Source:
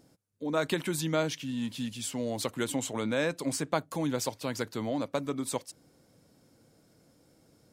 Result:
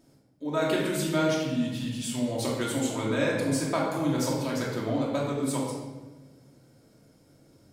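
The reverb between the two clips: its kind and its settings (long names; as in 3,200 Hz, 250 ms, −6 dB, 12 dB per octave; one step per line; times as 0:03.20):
rectangular room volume 900 cubic metres, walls mixed, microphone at 2.8 metres
level −3 dB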